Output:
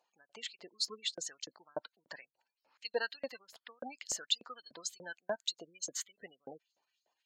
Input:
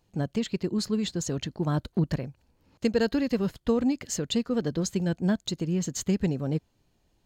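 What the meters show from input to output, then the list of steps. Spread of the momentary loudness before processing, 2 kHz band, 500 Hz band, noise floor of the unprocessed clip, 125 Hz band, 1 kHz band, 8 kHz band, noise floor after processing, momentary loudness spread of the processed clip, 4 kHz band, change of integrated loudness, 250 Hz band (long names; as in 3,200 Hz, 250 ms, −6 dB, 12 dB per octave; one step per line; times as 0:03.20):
5 LU, −4.0 dB, −13.5 dB, −70 dBFS, −38.0 dB, −8.5 dB, −4.5 dB, below −85 dBFS, 17 LU, −1.0 dB, −11.0 dB, −30.0 dB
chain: gate on every frequency bin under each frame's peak −30 dB strong
auto-filter high-pass saw up 3.4 Hz 580–6,500 Hz
level −6 dB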